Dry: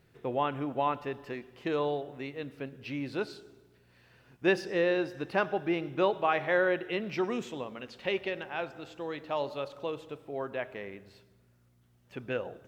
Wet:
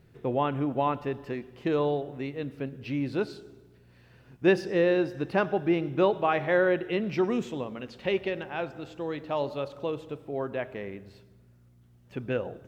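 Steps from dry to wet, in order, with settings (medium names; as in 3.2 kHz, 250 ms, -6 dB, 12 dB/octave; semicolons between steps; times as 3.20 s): bass shelf 430 Hz +8.5 dB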